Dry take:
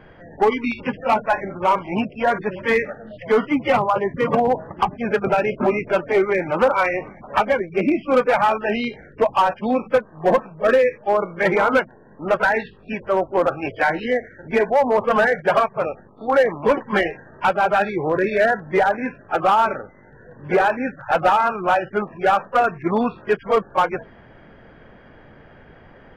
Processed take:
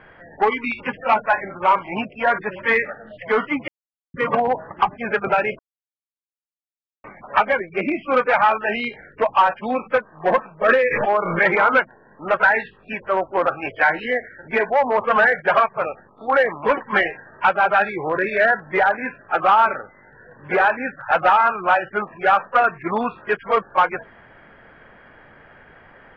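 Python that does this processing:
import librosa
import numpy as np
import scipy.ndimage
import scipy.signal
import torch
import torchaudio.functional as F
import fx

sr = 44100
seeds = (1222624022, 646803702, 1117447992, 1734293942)

y = fx.pre_swell(x, sr, db_per_s=31.0, at=(10.61, 11.66), fade=0.02)
y = fx.edit(y, sr, fx.silence(start_s=3.68, length_s=0.46),
    fx.silence(start_s=5.59, length_s=1.45), tone=tone)
y = scipy.signal.sosfilt(scipy.signal.butter(2, 1700.0, 'lowpass', fs=sr, output='sos'), y)
y = fx.tilt_shelf(y, sr, db=-10.0, hz=1100.0)
y = y * librosa.db_to_amplitude(3.5)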